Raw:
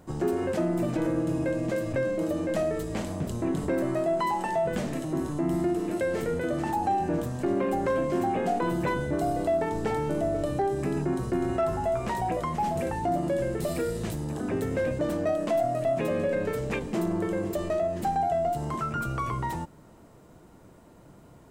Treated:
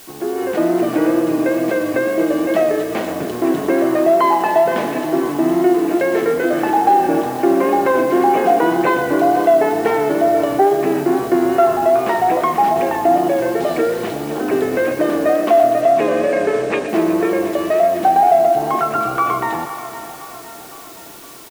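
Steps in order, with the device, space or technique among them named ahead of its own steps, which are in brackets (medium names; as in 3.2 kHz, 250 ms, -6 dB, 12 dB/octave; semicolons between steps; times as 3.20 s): dictaphone (band-pass 280–3200 Hz; level rider gain up to 10 dB; wow and flutter; white noise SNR 24 dB); 15.81–16.89 s: Chebyshev low-pass 9.3 kHz, order 5; comb 2.7 ms, depth 31%; thinning echo 121 ms, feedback 81%, high-pass 590 Hz, level -11 dB; feedback delay 511 ms, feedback 55%, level -14.5 dB; trim +2.5 dB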